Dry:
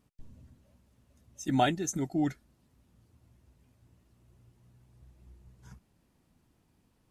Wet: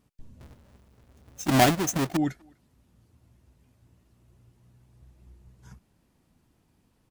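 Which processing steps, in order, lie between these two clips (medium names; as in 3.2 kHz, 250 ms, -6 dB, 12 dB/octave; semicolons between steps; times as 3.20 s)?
0.40–2.17 s: square wave that keeps the level; speakerphone echo 250 ms, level -28 dB; trim +2.5 dB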